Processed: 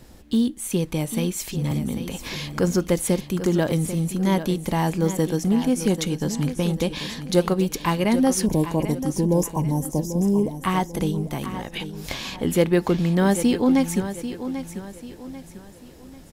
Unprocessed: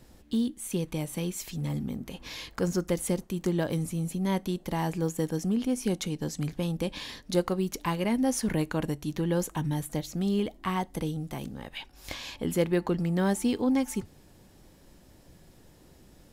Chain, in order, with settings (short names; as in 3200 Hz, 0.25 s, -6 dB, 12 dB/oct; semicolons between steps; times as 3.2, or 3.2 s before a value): 8.46–10.5 spectral gain 1100–4900 Hz -25 dB; feedback echo 0.791 s, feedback 38%, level -11 dB; 1.71–2.36 three-band squash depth 40%; gain +7 dB